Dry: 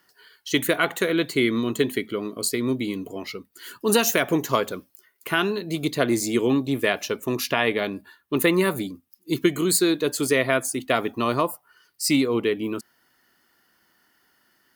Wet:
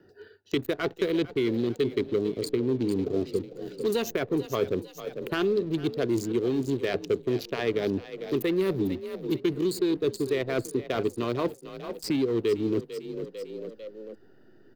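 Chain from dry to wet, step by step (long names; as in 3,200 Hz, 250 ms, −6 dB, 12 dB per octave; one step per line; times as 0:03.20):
adaptive Wiener filter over 41 samples
reversed playback
downward compressor 12 to 1, threshold −32 dBFS, peak gain reduction 18.5 dB
reversed playback
leveller curve on the samples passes 2
graphic EQ with 15 bands 100 Hz +11 dB, 400 Hz +10 dB, 4,000 Hz +5 dB, 10,000 Hz −10 dB
echo with shifted repeats 448 ms, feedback 38%, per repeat +36 Hz, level −15 dB
in parallel at −11.5 dB: slack as between gear wheels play −25.5 dBFS
on the sum: high-shelf EQ 4,700 Hz +6 dB
multiband upward and downward compressor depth 70%
level −6 dB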